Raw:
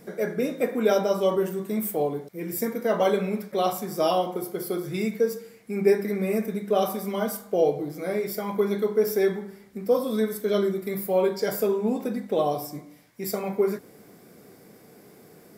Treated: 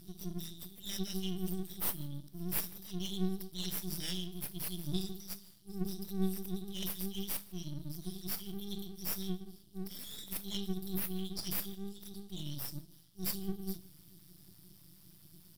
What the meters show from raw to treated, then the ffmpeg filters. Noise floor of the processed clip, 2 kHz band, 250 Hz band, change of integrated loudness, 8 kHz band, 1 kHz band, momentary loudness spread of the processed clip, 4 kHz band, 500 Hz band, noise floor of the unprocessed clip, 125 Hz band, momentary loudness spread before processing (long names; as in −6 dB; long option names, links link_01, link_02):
−60 dBFS, −16.0 dB, −11.5 dB, −13.5 dB, −3.5 dB, −24.0 dB, 13 LU, −2.5 dB, −25.0 dB, −52 dBFS, −5.5 dB, 9 LU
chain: -af "afftfilt=real='re*(1-between(b*sr/4096,200,2700))':imag='im*(1-between(b*sr/4096,200,2700))':win_size=4096:overlap=0.75,superequalizer=12b=0.282:15b=0.398,aeval=exprs='max(val(0),0)':channel_layout=same,aecho=1:1:153:0.0708,volume=2.5dB"